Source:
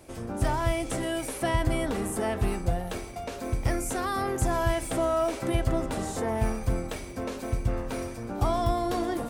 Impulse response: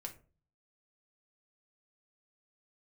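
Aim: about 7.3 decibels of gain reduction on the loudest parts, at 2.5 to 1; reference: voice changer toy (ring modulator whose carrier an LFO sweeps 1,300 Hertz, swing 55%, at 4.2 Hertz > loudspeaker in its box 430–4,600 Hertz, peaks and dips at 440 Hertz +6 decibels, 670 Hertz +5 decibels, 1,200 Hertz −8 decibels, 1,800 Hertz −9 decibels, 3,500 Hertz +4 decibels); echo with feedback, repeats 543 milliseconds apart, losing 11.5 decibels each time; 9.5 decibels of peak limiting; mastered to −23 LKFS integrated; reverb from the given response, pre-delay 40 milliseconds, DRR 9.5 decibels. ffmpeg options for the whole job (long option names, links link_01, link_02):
-filter_complex "[0:a]acompressor=threshold=-32dB:ratio=2.5,alimiter=level_in=4.5dB:limit=-24dB:level=0:latency=1,volume=-4.5dB,aecho=1:1:543|1086|1629:0.266|0.0718|0.0194,asplit=2[link_01][link_02];[1:a]atrim=start_sample=2205,adelay=40[link_03];[link_02][link_03]afir=irnorm=-1:irlink=0,volume=-6.5dB[link_04];[link_01][link_04]amix=inputs=2:normalize=0,aeval=exprs='val(0)*sin(2*PI*1300*n/s+1300*0.55/4.2*sin(2*PI*4.2*n/s))':channel_layout=same,highpass=430,equalizer=frequency=440:width_type=q:width=4:gain=6,equalizer=frequency=670:width_type=q:width=4:gain=5,equalizer=frequency=1200:width_type=q:width=4:gain=-8,equalizer=frequency=1800:width_type=q:width=4:gain=-9,equalizer=frequency=3500:width_type=q:width=4:gain=4,lowpass=frequency=4600:width=0.5412,lowpass=frequency=4600:width=1.3066,volume=17.5dB"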